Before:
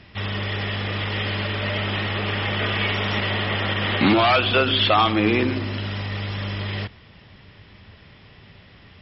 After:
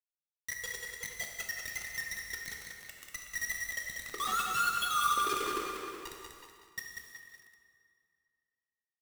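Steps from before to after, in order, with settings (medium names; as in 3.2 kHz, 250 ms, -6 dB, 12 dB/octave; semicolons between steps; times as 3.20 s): formants replaced by sine waves; resonant low shelf 780 Hz -7 dB, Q 3; reverse; compression 12:1, threshold -29 dBFS, peak gain reduction 21.5 dB; reverse; loudest bins only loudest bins 2; formant shift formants +4 st; hum 50 Hz, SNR 21 dB; bit crusher 6-bit; speakerphone echo 370 ms, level -7 dB; plate-style reverb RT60 2.4 s, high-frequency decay 0.8×, DRR 0.5 dB; bit-crushed delay 190 ms, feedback 35%, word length 9-bit, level -5 dB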